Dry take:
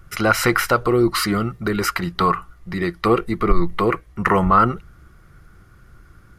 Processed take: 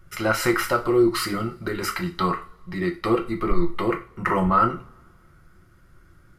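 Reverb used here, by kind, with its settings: two-slope reverb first 0.31 s, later 1.7 s, from -28 dB, DRR 2 dB; gain -7 dB

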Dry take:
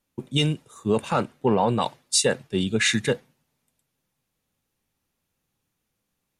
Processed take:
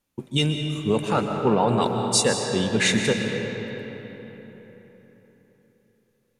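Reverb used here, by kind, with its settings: digital reverb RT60 4.1 s, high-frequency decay 0.6×, pre-delay 90 ms, DRR 3.5 dB

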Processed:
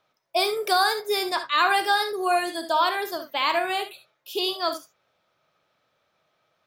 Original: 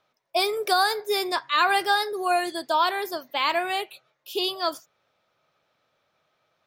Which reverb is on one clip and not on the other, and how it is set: non-linear reverb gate 90 ms rising, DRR 8.5 dB

